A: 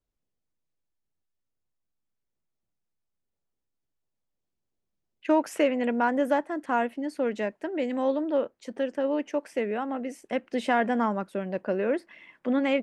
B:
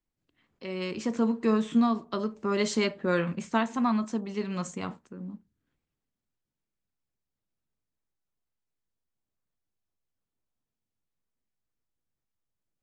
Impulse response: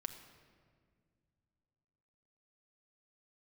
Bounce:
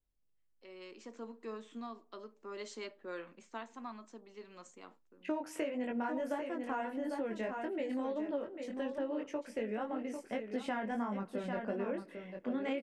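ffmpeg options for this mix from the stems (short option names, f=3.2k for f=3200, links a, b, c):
-filter_complex "[0:a]flanger=delay=19.5:depth=3.6:speed=1.7,volume=-5.5dB,asplit=3[a][b][c];[b]volume=-11.5dB[d];[c]volume=-7.5dB[e];[1:a]agate=range=-12dB:threshold=-50dB:ratio=16:detection=peak,highpass=f=290:w=0.5412,highpass=f=290:w=1.3066,volume=-16.5dB[f];[2:a]atrim=start_sample=2205[g];[d][g]afir=irnorm=-1:irlink=0[h];[e]aecho=0:1:797:1[i];[a][f][h][i]amix=inputs=4:normalize=0,lowshelf=f=110:g=9.5,acompressor=threshold=-33dB:ratio=6"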